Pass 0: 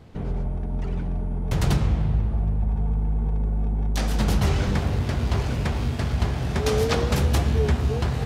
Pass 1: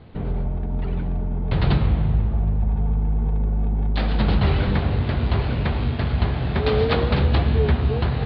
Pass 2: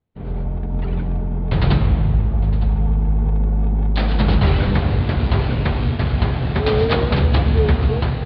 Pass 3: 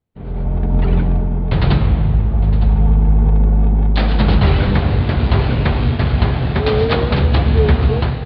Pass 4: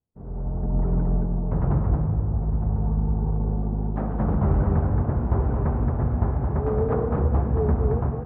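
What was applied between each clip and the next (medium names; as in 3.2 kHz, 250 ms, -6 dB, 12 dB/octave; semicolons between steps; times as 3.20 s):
steep low-pass 4.4 kHz 72 dB/octave; trim +2.5 dB
expander -22 dBFS; level rider gain up to 4 dB; delay 910 ms -16.5 dB
level rider gain up to 11 dB; trim -1 dB
low-pass 1.2 kHz 24 dB/octave; on a send: delay 223 ms -4.5 dB; on the sum: trim -9 dB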